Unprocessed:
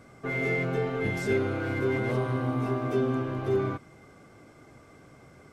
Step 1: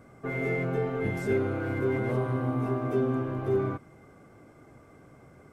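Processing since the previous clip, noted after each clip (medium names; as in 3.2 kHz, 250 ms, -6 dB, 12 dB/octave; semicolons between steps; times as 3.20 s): peaking EQ 4.4 kHz -9 dB 2 oct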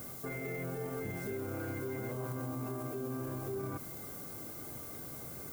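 reverse; compression 4:1, threshold -37 dBFS, peak gain reduction 13 dB; reverse; added noise violet -51 dBFS; peak limiter -34.5 dBFS, peak gain reduction 8 dB; trim +4 dB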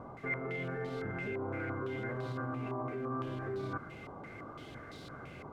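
step-sequenced low-pass 5.9 Hz 970–3900 Hz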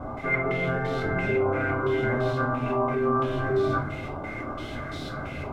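reverberation RT60 0.35 s, pre-delay 3 ms, DRR -6 dB; trim +3.5 dB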